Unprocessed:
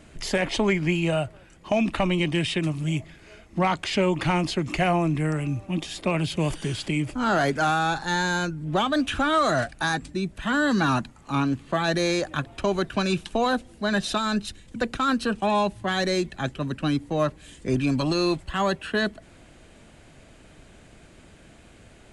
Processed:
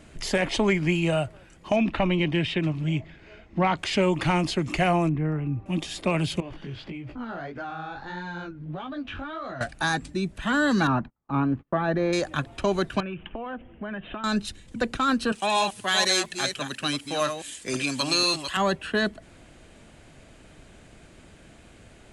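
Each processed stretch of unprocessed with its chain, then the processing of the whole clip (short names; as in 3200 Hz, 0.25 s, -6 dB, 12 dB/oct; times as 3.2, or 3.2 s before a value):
1.76–3.78 LPF 3600 Hz + notch 1200 Hz, Q 16
5.09–5.66 tape spacing loss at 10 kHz 45 dB + notch 590 Hz, Q 14
6.4–9.61 air absorption 260 m + compressor, threshold -29 dBFS + chorus 1.6 Hz, delay 15.5 ms, depth 6.7 ms
10.87–12.13 gate -42 dBFS, range -32 dB + LPF 1500 Hz
13–14.24 steep low-pass 3200 Hz 96 dB/oct + compressor 12:1, threshold -30 dBFS
15.32–18.57 reverse delay 0.243 s, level -7 dB + tilt +4 dB/oct
whole clip: dry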